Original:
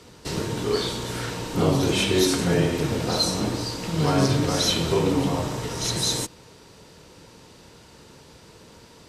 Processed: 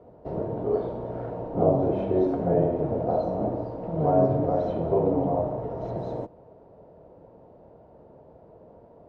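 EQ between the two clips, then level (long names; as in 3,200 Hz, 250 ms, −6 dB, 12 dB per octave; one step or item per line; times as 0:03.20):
low-pass with resonance 660 Hz, resonance Q 4.9
−5.0 dB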